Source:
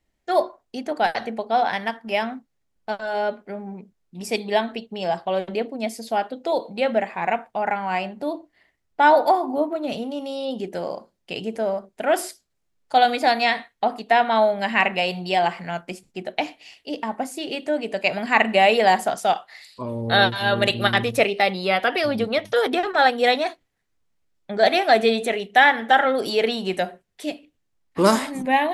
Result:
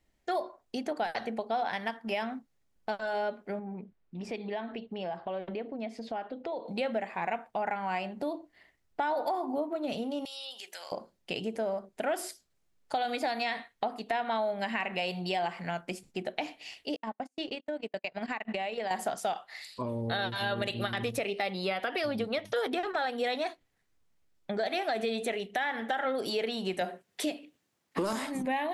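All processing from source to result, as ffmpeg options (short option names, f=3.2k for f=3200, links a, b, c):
-filter_complex "[0:a]asettb=1/sr,asplit=3[a][b][c];[a]atrim=end=3.594[d];[b]atrim=start=3.59:end=6.68,asetpts=PTS-STARTPTS,afade=t=in:d=0.004:c=qsin,afade=t=out:st=3.086:d=0.004:c=qsin,lowpass=2.8k,acompressor=threshold=-38dB:ratio=2:attack=3.2:release=140:knee=1:detection=peak[e];[c]atrim=start=6.676[f];[d][e]acrossfade=d=0.004:c1=hsin:c2=qsin[g];[g][f]acrossfade=d=0.004:c1=qsin:c2=hsin,asettb=1/sr,asplit=3[h][i][j];[h]atrim=end=10.254[k];[i]atrim=start=10.25:end=10.92,asetpts=PTS-STARTPTS,afade=t=in:d=0.004:c=qsin,afade=t=out:st=0.666:d=0.004:c=qsin,highpass=1k,tiltshelf=f=1.4k:g=-8.5,acompressor=threshold=-42dB:ratio=2.5:attack=3.2:release=140:knee=1:detection=peak[l];[j]atrim=start=10.916[m];[k][l]acrossfade=d=0.004:c1=hsin:c2=qsin[n];[n][m]acrossfade=d=0.004:c1=qsin:c2=hsin,asettb=1/sr,asplit=3[o][p][q];[o]atrim=end=16.964[r];[p]atrim=start=16.96:end=18.91,asetpts=PTS-STARTPTS,afade=t=in:d=0.004:c=qsin,afade=t=out:st=1.946:d=0.004:c=qsin,lowpass=6.6k,acompressor=threshold=-25dB:ratio=16:attack=3.2:release=140:knee=1:detection=peak,agate=range=-43dB:threshold=-31dB:ratio=16:release=100:detection=peak[s];[q]atrim=start=18.906[t];[r][s]acrossfade=d=0.004:c1=hsin:c2=qsin[u];[u][t]acrossfade=d=0.004:c1=qsin:c2=hsin,asettb=1/sr,asplit=3[v][w][x];[v]atrim=end=26.814[y];[w]atrim=start=26.81:end=28.13,asetpts=PTS-STARTPTS,afade=t=in:d=0.004:c=qsin,afade=t=out:st=1.316:d=0.004:c=qsin,highpass=170,acontrast=69[z];[x]atrim=start=28.126[aa];[y][z]acrossfade=d=0.004:c1=hsin:c2=qsin[ab];[ab][aa]acrossfade=d=0.004:c1=qsin:c2=hsin,alimiter=limit=-12dB:level=0:latency=1:release=75,acompressor=threshold=-33dB:ratio=2.5"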